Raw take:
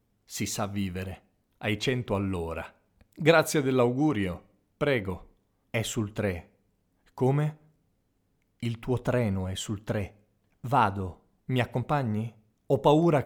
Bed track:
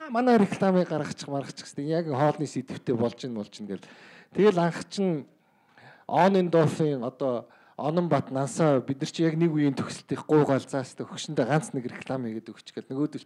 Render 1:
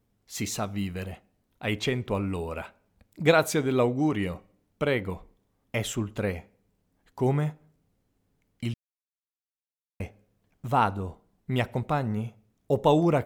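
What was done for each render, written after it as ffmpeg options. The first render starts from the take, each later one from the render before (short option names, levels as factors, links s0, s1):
-filter_complex "[0:a]asplit=3[s0][s1][s2];[s0]atrim=end=8.74,asetpts=PTS-STARTPTS,afade=t=out:st=8.736:d=0.004:c=hsin[s3];[s1]atrim=start=8.74:end=10,asetpts=PTS-STARTPTS,volume=0[s4];[s2]atrim=start=10,asetpts=PTS-STARTPTS,afade=t=in:d=0.004:c=hsin[s5];[s3][s4][s5]concat=n=3:v=0:a=1"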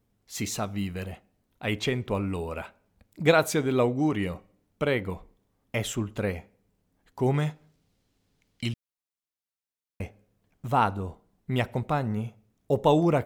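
-filter_complex "[0:a]asettb=1/sr,asplit=3[s0][s1][s2];[s0]atrim=end=7.344[s3];[s1]atrim=start=7.34:end=8.69,asetpts=PTS-STARTPTS,afade=t=in:d=0.004:c=qsin,afade=t=out:st=1.346:d=0.004:c=qsin,equalizer=f=4200:w=0.65:g=10[s4];[s2]atrim=start=8.686[s5];[s3][s4]acrossfade=d=0.004:c1=hsin:c2=qsin[s6];[s6][s5]acrossfade=d=0.004:c1=qsin:c2=hsin"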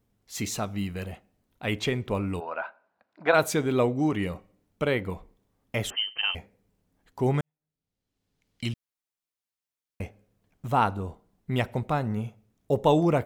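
-filter_complex "[0:a]asplit=3[s0][s1][s2];[s0]afade=t=out:st=2.39:d=0.02[s3];[s1]highpass=440,equalizer=f=440:t=q:w=4:g=-5,equalizer=f=680:t=q:w=4:g=7,equalizer=f=1000:t=q:w=4:g=6,equalizer=f=1500:t=q:w=4:g=9,equalizer=f=2200:t=q:w=4:g=-5,equalizer=f=3300:t=q:w=4:g=-8,lowpass=f=3800:w=0.5412,lowpass=f=3800:w=1.3066,afade=t=in:st=2.39:d=0.02,afade=t=out:st=3.33:d=0.02[s4];[s2]afade=t=in:st=3.33:d=0.02[s5];[s3][s4][s5]amix=inputs=3:normalize=0,asettb=1/sr,asplit=3[s6][s7][s8];[s6]atrim=end=5.904[s9];[s7]atrim=start=5.9:end=6.35,asetpts=PTS-STARTPTS,afade=t=in:d=0.004:c=qsin,afade=t=out:st=0.446:d=0.004:c=qsin,lowpass=f=2700:t=q:w=0.5098,lowpass=f=2700:t=q:w=0.6013,lowpass=f=2700:t=q:w=0.9,lowpass=f=2700:t=q:w=2.563,afreqshift=-3200[s10];[s8]atrim=start=6.346[s11];[s9][s10]acrossfade=d=0.004:c1=hsin:c2=qsin[s12];[s12][s11]acrossfade=d=0.004:c1=qsin:c2=hsin,asplit=2[s13][s14];[s13]atrim=end=7.41,asetpts=PTS-STARTPTS,afade=t=out:st=7.406:d=0.004:c=hsin[s15];[s14]atrim=start=7.41,asetpts=PTS-STARTPTS,afade=t=in:d=1.3:c=qua[s16];[s15][s16]concat=n=2:v=0:a=1"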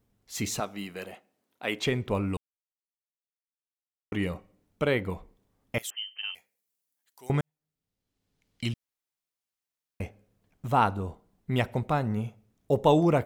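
-filter_complex "[0:a]asettb=1/sr,asplit=3[s0][s1][s2];[s0]atrim=end=0.604[s3];[s1]atrim=start=0.6:end=1.86,asetpts=PTS-STARTPTS,afade=t=in:d=0.004:c=qsin,afade=t=out:st=1.256:d=0.004:c=qsin,highpass=300[s4];[s2]atrim=start=1.856[s5];[s3][s4]acrossfade=d=0.004:c1=hsin:c2=qsin[s6];[s6][s5]acrossfade=d=0.004:c1=qsin:c2=hsin,asettb=1/sr,asplit=3[s7][s8][s9];[s7]atrim=end=5.784[s10];[s8]atrim=start=5.78:end=7.3,asetpts=PTS-STARTPTS,afade=t=in:d=0.004:c=qsin,afade=t=out:st=1.516:d=0.004:c=qsin,aderivative[s11];[s9]atrim=start=7.296[s12];[s10][s11]acrossfade=d=0.004:c1=hsin:c2=qsin[s13];[s13][s12]acrossfade=d=0.004:c1=qsin:c2=hsin,asplit=3[s14][s15][s16];[s14]atrim=end=2.37,asetpts=PTS-STARTPTS,afade=t=out:st=2.366:d=0.004:c=hsin[s17];[s15]atrim=start=2.37:end=4.12,asetpts=PTS-STARTPTS,volume=0[s18];[s16]atrim=start=4.12,asetpts=PTS-STARTPTS,afade=t=in:d=0.004:c=hsin[s19];[s17][s18][s19]concat=n=3:v=0:a=1"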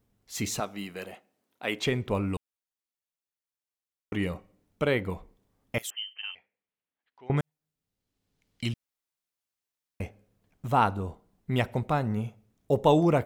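-filter_complex "[0:a]asettb=1/sr,asplit=3[s0][s1][s2];[s0]atrim=end=6.134[s3];[s1]atrim=start=6.13:end=7.37,asetpts=PTS-STARTPTS,afade=t=in:d=0.004:c=qsin,afade=t=out:st=1.236:d=0.004:c=qsin,lowpass=f=3000:w=0.5412,lowpass=f=3000:w=1.3066[s4];[s2]atrim=start=7.366[s5];[s3][s4]acrossfade=d=0.004:c1=hsin:c2=qsin[s6];[s6][s5]acrossfade=d=0.004:c1=qsin:c2=hsin"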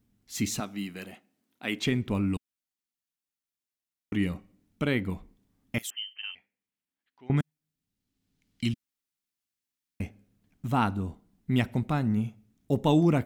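-af "equalizer=f=250:t=o:w=1:g=7,equalizer=f=500:t=o:w=1:g=-8,equalizer=f=1000:t=o:w=1:g=-4"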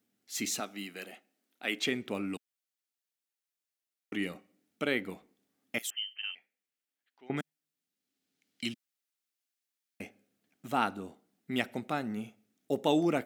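-af "highpass=360,equalizer=f=1000:t=o:w=0.24:g=-9"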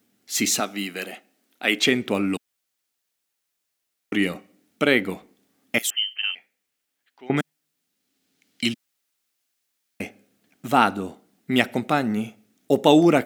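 -af "volume=3.98,alimiter=limit=0.794:level=0:latency=1"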